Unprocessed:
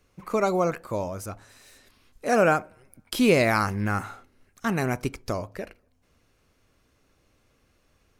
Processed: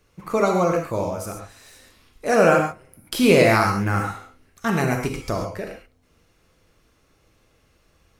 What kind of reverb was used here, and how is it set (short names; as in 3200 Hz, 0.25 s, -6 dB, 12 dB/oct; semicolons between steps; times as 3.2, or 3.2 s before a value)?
non-linear reverb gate 0.16 s flat, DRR 1.5 dB; gain +2.5 dB